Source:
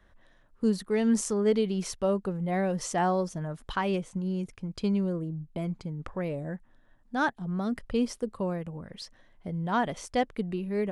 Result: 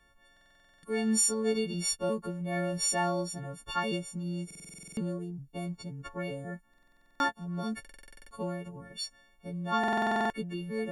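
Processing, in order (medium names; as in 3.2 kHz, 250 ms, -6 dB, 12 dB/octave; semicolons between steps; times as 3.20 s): partials quantised in pitch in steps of 4 st; buffer glitch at 0.32/4.46/6.69/7.80/9.79 s, samples 2048, times 10; trim -4.5 dB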